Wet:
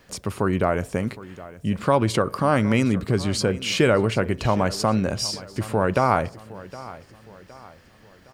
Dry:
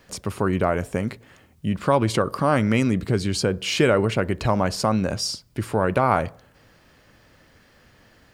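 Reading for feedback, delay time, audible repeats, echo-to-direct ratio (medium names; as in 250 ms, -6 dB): 43%, 764 ms, 3, -17.0 dB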